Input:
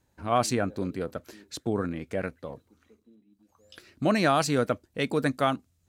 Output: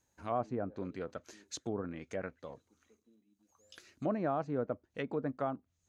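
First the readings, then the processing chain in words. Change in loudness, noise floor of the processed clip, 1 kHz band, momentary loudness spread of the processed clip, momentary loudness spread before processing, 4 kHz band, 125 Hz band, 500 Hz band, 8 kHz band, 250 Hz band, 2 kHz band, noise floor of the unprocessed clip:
-10.0 dB, -80 dBFS, -11.0 dB, 16 LU, 14 LU, -17.0 dB, -11.0 dB, -8.5 dB, -14.0 dB, -10.0 dB, -15.5 dB, -71 dBFS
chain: low shelf 410 Hz -6 dB; treble ducked by the level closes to 790 Hz, closed at -26 dBFS; bell 6500 Hz +11 dB 0.25 oct; gain -5.5 dB

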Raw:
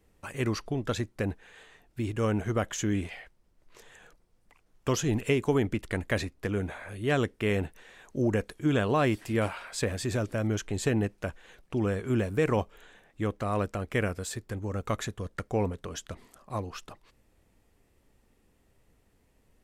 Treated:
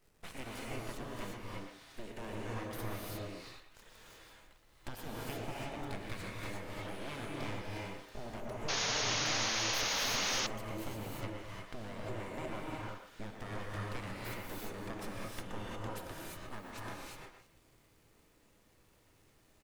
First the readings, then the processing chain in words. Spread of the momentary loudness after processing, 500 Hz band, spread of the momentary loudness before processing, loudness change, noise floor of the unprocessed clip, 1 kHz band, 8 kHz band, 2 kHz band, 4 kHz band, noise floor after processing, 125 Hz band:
18 LU, -13.5 dB, 12 LU, -8.5 dB, -67 dBFS, -5.5 dB, 0.0 dB, -5.0 dB, +3.5 dB, -67 dBFS, -13.5 dB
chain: compressor 5:1, threshold -37 dBFS, peak gain reduction 15 dB; full-wave rectifier; crackle 280/s -57 dBFS; speakerphone echo 0.12 s, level -7 dB; non-linear reverb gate 0.38 s rising, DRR -4 dB; painted sound noise, 8.68–10.47, 420–6800 Hz -31 dBFS; gain -3.5 dB

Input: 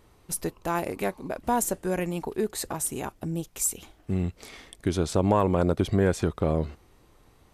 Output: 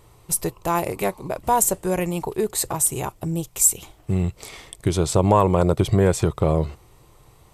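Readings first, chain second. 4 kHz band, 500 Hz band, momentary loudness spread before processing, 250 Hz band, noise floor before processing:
+5.5 dB, +5.0 dB, 10 LU, +3.5 dB, -59 dBFS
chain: thirty-one-band EQ 125 Hz +8 dB, 250 Hz -11 dB, 1000 Hz +3 dB, 1600 Hz -6 dB, 8000 Hz +6 dB, 12500 Hz +5 dB; gain +5.5 dB

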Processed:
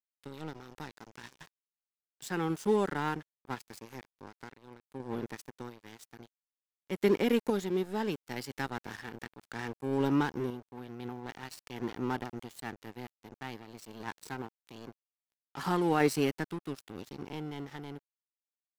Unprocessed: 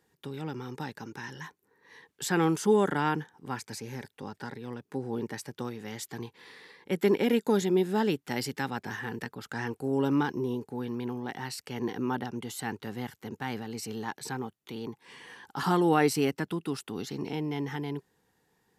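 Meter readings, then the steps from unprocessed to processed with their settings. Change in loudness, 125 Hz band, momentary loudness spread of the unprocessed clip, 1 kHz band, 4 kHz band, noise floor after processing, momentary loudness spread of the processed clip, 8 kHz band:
-3.0 dB, -5.0 dB, 16 LU, -4.5 dB, -5.0 dB, under -85 dBFS, 21 LU, -8.0 dB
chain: crossover distortion -38.5 dBFS; random-step tremolo 2 Hz

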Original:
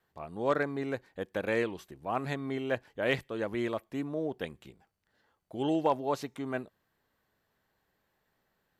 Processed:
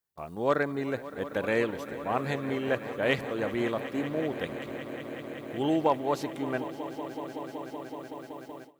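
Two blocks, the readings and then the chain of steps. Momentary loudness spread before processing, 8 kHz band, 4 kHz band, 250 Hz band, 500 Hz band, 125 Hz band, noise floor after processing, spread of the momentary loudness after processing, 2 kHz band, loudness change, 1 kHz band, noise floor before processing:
9 LU, +3.5 dB, +3.5 dB, +3.5 dB, +3.5 dB, +3.0 dB, -48 dBFS, 12 LU, +3.5 dB, +2.0 dB, +3.5 dB, -78 dBFS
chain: added noise blue -70 dBFS; swelling echo 0.188 s, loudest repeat 5, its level -16 dB; gate with hold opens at -35 dBFS; gain +2.5 dB

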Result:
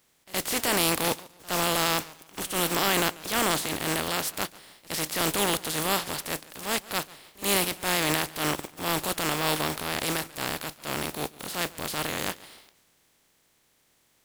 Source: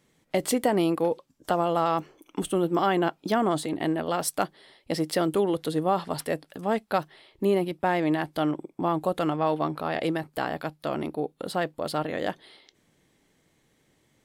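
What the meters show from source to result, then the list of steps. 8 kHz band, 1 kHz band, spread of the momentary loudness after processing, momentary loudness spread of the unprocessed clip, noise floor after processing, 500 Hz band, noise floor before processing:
+10.0 dB, -2.5 dB, 9 LU, 8 LU, -67 dBFS, -5.5 dB, -68 dBFS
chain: spectral contrast lowered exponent 0.33; transient shaper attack -8 dB, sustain +3 dB; pre-echo 69 ms -21 dB; warbling echo 0.144 s, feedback 31%, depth 123 cents, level -21 dB

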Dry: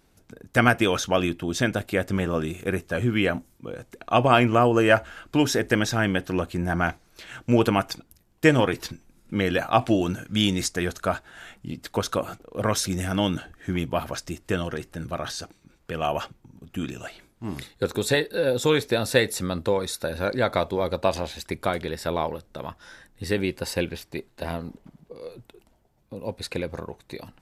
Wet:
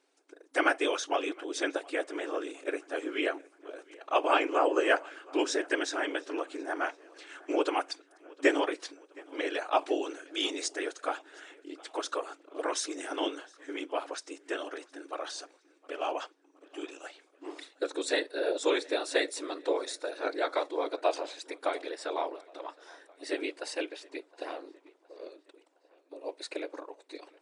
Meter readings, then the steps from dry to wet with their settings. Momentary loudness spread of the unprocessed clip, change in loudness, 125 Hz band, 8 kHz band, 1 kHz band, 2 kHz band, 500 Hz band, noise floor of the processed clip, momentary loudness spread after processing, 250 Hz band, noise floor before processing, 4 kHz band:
17 LU, -7.5 dB, under -40 dB, -7.0 dB, -6.0 dB, -6.5 dB, -6.5 dB, -66 dBFS, 18 LU, -11.0 dB, -62 dBFS, -6.5 dB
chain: whisperiser; tape echo 0.715 s, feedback 55%, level -23 dB, low-pass 5300 Hz; FFT band-pass 270–10000 Hz; gain -6.5 dB

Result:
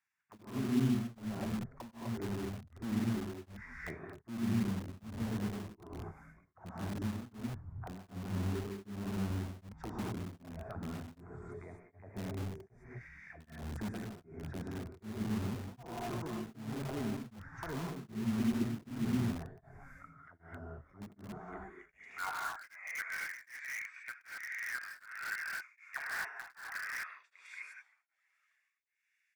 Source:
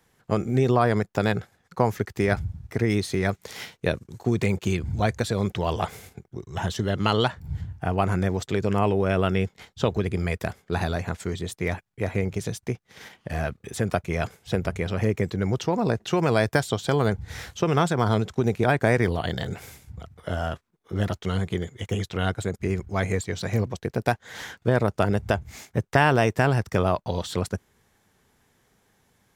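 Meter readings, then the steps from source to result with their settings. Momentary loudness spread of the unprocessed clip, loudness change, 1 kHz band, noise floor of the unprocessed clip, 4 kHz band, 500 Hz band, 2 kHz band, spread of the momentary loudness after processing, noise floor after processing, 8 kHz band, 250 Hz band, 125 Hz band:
11 LU, -14.0 dB, -18.5 dB, -67 dBFS, -17.0 dB, -22.0 dB, -11.5 dB, 16 LU, -79 dBFS, -13.0 dB, -10.0 dB, -15.5 dB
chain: HPF 47 Hz 12 dB/oct; bell 76 Hz +12 dB 0.2 oct; notch 4100 Hz, Q 5.1; high-pass sweep 96 Hz -> 2100 Hz, 20.85–22.76; fixed phaser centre 1300 Hz, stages 4; auto-wah 240–2900 Hz, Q 5.1, down, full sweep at -17.5 dBFS; on a send: frequency-shifting echo 0.325 s, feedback 49%, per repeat -130 Hz, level -22 dB; on the sum: non-linear reverb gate 0.28 s rising, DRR -4.5 dB; in parallel at -5 dB: wrapped overs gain 32 dB; on the sum: beating tremolo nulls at 1.3 Hz; gain -5 dB

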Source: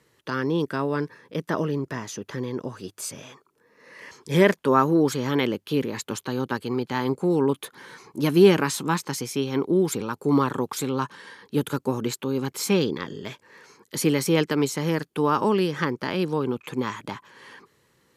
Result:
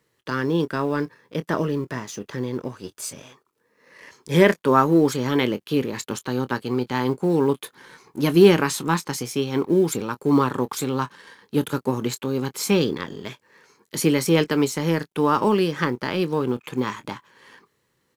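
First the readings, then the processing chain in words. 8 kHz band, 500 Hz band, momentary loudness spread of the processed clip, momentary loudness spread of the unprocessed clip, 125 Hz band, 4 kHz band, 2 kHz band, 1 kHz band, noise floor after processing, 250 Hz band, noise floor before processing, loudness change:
+1.5 dB, +2.0 dB, 15 LU, 14 LU, +2.0 dB, +2.0 dB, +2.0 dB, +2.0 dB, -71 dBFS, +2.0 dB, -67 dBFS, +2.0 dB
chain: G.711 law mismatch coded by A; doubler 24 ms -14 dB; gain +2.5 dB

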